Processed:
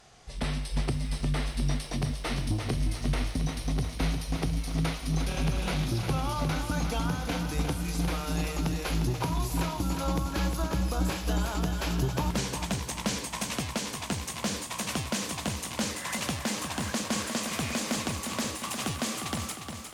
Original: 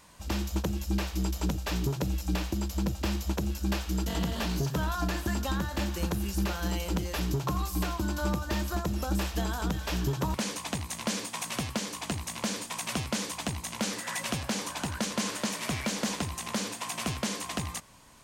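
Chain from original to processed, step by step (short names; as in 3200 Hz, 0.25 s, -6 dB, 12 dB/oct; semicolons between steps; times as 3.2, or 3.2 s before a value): speed glide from 72% -> 111%; lo-fi delay 0.355 s, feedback 55%, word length 10-bit, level -7 dB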